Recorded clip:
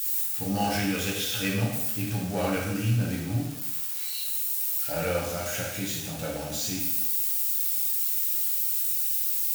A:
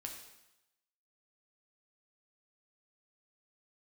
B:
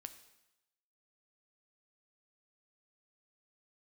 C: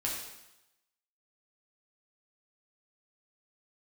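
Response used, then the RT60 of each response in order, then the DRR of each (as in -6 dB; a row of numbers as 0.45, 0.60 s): C; 0.90, 0.95, 0.90 s; 1.0, 9.0, -4.0 dB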